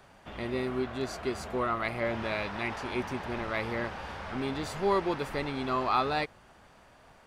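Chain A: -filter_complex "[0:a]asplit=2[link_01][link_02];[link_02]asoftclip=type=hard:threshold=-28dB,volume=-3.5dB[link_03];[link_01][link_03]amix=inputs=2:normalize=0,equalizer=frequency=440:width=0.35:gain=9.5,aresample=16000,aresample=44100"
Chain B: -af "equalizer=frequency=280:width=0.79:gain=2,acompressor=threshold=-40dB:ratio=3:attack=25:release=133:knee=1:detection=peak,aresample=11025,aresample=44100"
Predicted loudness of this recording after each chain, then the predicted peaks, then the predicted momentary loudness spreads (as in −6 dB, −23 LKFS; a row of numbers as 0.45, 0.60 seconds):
−21.0, −39.0 LKFS; −7.0, −23.0 dBFS; 7, 9 LU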